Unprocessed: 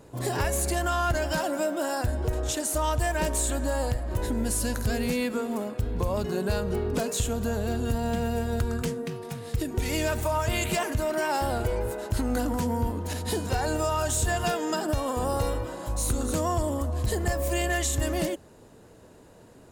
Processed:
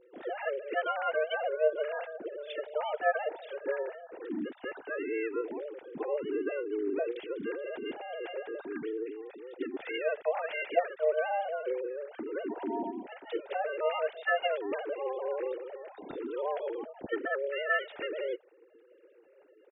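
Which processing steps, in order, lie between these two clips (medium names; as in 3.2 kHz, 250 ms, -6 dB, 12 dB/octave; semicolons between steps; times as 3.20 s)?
formants replaced by sine waves; harmony voices -5 st -4 dB; peaking EQ 1.1 kHz -10 dB 0.35 oct; trim -7.5 dB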